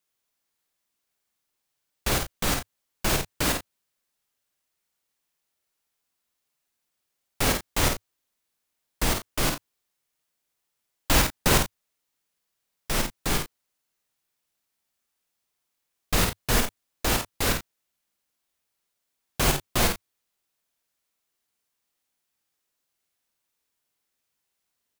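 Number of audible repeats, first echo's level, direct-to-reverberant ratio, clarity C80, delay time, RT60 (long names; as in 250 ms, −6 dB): 2, −4.5 dB, no reverb audible, no reverb audible, 50 ms, no reverb audible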